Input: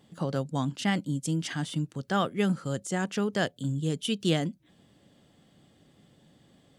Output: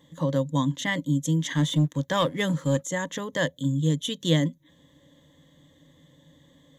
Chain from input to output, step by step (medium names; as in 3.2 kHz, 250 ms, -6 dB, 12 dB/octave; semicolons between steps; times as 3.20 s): rippled EQ curve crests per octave 1.1, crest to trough 15 dB; 1.55–2.85 s: waveshaping leveller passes 1